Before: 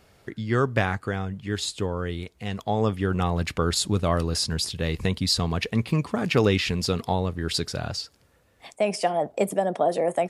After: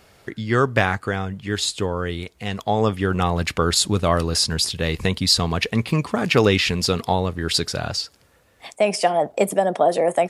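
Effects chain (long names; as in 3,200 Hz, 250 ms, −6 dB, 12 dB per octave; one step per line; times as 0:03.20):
low-shelf EQ 420 Hz −4.5 dB
level +6.5 dB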